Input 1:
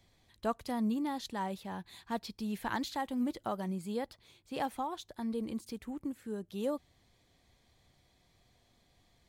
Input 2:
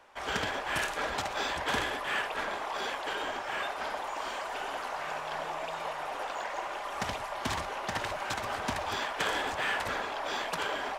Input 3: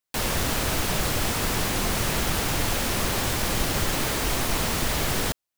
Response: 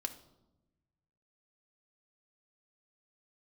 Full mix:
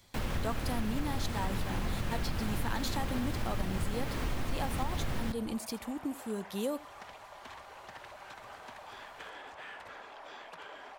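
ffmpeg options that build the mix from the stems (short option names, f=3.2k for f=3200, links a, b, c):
-filter_complex "[0:a]highshelf=f=3.8k:g=10,volume=2.5dB,asplit=2[a][b];[b]volume=-21dB[c];[1:a]acrossover=split=390|3700[d][e][f];[d]acompressor=threshold=-49dB:ratio=4[g];[e]acompressor=threshold=-30dB:ratio=4[h];[f]acompressor=threshold=-52dB:ratio=4[i];[g][h][i]amix=inputs=3:normalize=0,volume=-13dB[j];[2:a]bass=f=250:g=8,treble=f=4k:g=-10,volume=-12dB,asplit=2[k][l];[l]volume=-4dB[m];[3:a]atrim=start_sample=2205[n];[m][n]afir=irnorm=-1:irlink=0[o];[c]aecho=0:1:82:1[p];[a][j][k][o][p]amix=inputs=5:normalize=0,acompressor=threshold=-30dB:ratio=3"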